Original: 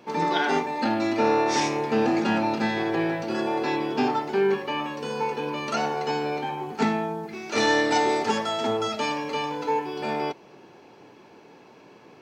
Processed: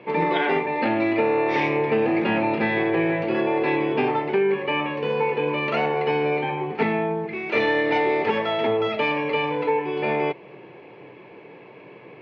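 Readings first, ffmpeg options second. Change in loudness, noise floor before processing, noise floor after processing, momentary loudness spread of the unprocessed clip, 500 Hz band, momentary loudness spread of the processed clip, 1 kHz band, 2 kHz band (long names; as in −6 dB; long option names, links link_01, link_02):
+2.5 dB, −51 dBFS, −45 dBFS, 8 LU, +4.5 dB, 4 LU, +0.5 dB, +4.0 dB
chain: -af "highpass=110,equalizer=frequency=130:width_type=q:width=4:gain=5,equalizer=frequency=240:width_type=q:width=4:gain=-8,equalizer=frequency=490:width_type=q:width=4:gain=3,equalizer=frequency=810:width_type=q:width=4:gain=-5,equalizer=frequency=1400:width_type=q:width=4:gain=-8,equalizer=frequency=2200:width_type=q:width=4:gain=6,lowpass=frequency=2900:width=0.5412,lowpass=frequency=2900:width=1.3066,acompressor=threshold=-24dB:ratio=6,volume=6.5dB"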